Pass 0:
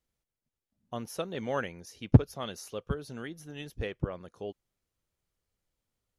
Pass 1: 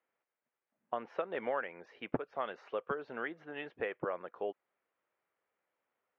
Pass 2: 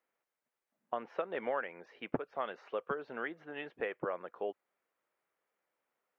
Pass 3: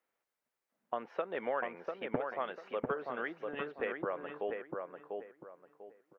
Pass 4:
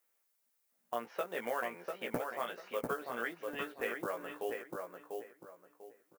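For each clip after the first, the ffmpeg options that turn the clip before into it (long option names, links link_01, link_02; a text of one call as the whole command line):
ffmpeg -i in.wav -af "highpass=540,acompressor=threshold=-39dB:ratio=6,lowpass=frequency=2200:width=0.5412,lowpass=frequency=2200:width=1.3066,volume=8dB" out.wav
ffmpeg -i in.wav -af "equalizer=frequency=97:width_type=o:width=0.26:gain=-14.5" out.wav
ffmpeg -i in.wav -filter_complex "[0:a]asplit=2[link_01][link_02];[link_02]adelay=695,lowpass=frequency=1800:poles=1,volume=-3.5dB,asplit=2[link_03][link_04];[link_04]adelay=695,lowpass=frequency=1800:poles=1,volume=0.29,asplit=2[link_05][link_06];[link_06]adelay=695,lowpass=frequency=1800:poles=1,volume=0.29,asplit=2[link_07][link_08];[link_08]adelay=695,lowpass=frequency=1800:poles=1,volume=0.29[link_09];[link_01][link_03][link_05][link_07][link_09]amix=inputs=5:normalize=0" out.wav
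ffmpeg -i in.wav -filter_complex "[0:a]acrusher=bits=8:mode=log:mix=0:aa=0.000001,crystalizer=i=3.5:c=0,asplit=2[link_01][link_02];[link_02]adelay=17,volume=-4dB[link_03];[link_01][link_03]amix=inputs=2:normalize=0,volume=-3.5dB" out.wav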